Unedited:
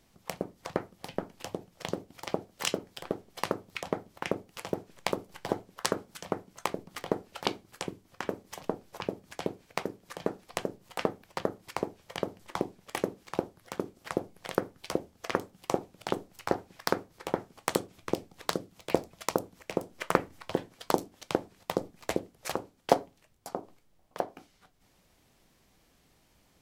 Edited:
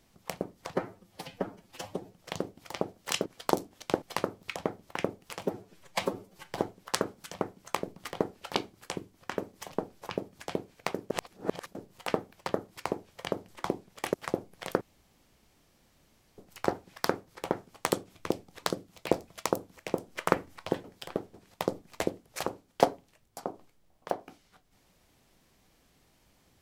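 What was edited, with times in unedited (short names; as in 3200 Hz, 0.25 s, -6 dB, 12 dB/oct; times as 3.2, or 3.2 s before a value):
0.73–1.67 stretch 1.5×
2.79–3.29 swap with 20.67–21.43
4.7–5.42 stretch 1.5×
10.01–10.66 reverse
13.05–13.97 cut
14.64–16.21 room tone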